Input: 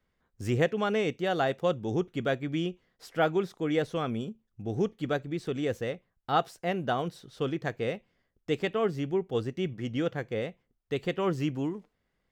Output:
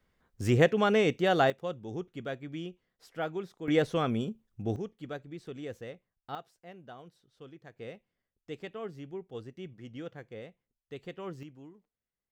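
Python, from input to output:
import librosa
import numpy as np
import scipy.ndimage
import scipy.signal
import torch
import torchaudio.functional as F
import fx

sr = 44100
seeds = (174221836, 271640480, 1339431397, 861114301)

y = fx.gain(x, sr, db=fx.steps((0.0, 3.0), (1.5, -8.5), (3.68, 2.0), (4.76, -10.0), (6.35, -19.0), (7.76, -12.0), (11.43, -19.0)))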